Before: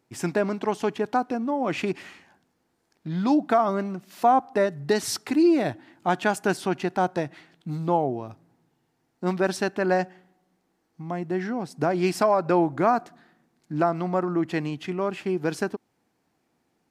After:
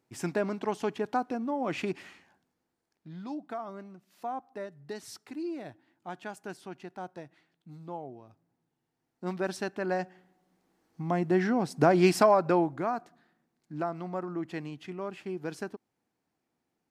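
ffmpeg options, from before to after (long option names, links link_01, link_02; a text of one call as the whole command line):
ffmpeg -i in.wav -af "volume=13.5dB,afade=type=out:start_time=1.97:duration=1.3:silence=0.266073,afade=type=in:start_time=8.25:duration=1.18:silence=0.354813,afade=type=in:start_time=9.98:duration=1.14:silence=0.316228,afade=type=out:start_time=12:duration=0.84:silence=0.251189" out.wav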